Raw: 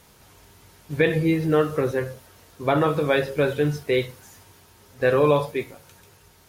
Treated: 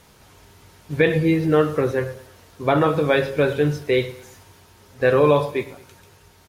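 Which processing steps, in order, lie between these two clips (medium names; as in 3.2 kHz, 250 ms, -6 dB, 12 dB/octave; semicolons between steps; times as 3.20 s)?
treble shelf 9.2 kHz -6.5 dB; feedback delay 111 ms, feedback 40%, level -17.5 dB; trim +2.5 dB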